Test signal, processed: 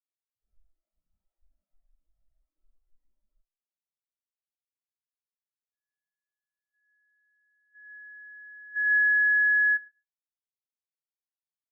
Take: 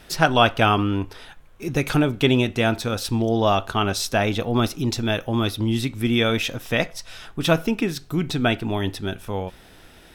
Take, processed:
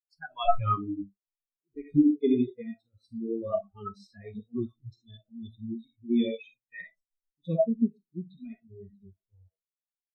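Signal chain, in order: digital reverb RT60 0.54 s, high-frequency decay 0.55×, pre-delay 20 ms, DRR 1.5 dB; spectral noise reduction 16 dB; spectral expander 2.5:1; gain -3.5 dB

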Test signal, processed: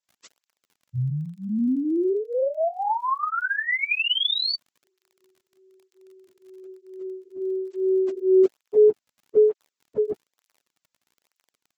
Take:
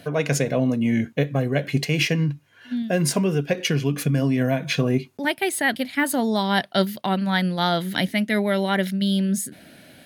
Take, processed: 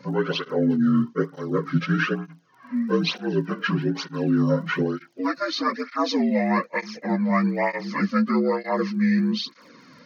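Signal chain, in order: inharmonic rescaling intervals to 77%; crackle 36/s -45 dBFS; tape flanging out of phase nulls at 1.1 Hz, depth 2.8 ms; gain +2.5 dB

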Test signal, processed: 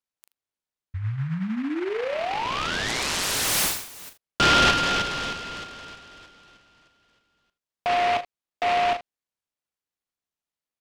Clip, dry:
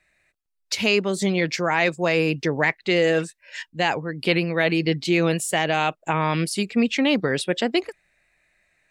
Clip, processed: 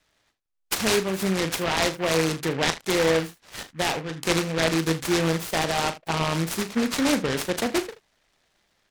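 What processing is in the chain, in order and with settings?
resonant high shelf 7700 Hz -8 dB, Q 3; early reflections 37 ms -9 dB, 78 ms -16 dB; noise-modulated delay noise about 1500 Hz, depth 0.11 ms; gain -3.5 dB

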